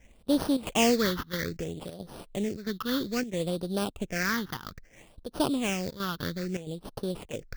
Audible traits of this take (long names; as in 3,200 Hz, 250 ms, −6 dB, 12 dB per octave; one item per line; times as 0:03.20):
aliases and images of a low sample rate 4,000 Hz, jitter 20%
phaser sweep stages 6, 0.61 Hz, lowest notch 620–2,100 Hz
chopped level 1.5 Hz, depth 65%, duty 85%